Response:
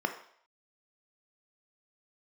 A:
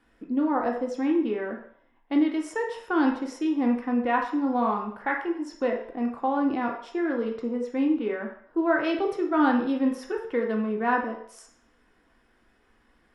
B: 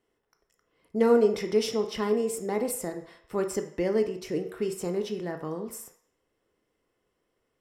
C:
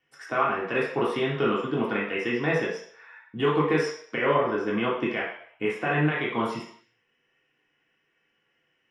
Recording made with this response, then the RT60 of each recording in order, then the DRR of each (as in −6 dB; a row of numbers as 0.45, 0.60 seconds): B; 0.60, 0.60, 0.60 seconds; 0.0, 5.5, −6.0 decibels